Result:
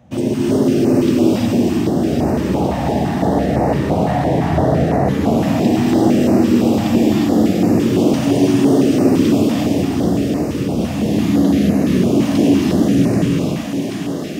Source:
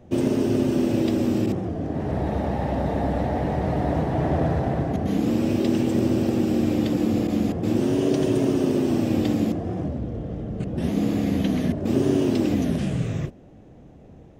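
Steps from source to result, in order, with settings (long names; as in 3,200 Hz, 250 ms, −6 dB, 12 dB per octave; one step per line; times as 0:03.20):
high-pass filter 92 Hz
feedback echo with a high-pass in the loop 783 ms, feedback 75%, high-pass 260 Hz, level −5 dB
reverb whose tail is shaped and stops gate 390 ms rising, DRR −4.5 dB
in parallel at −11 dB: soft clipping −15.5 dBFS, distortion −12 dB
on the sum: notch on a step sequencer 5.9 Hz 390–3,300 Hz
level +2 dB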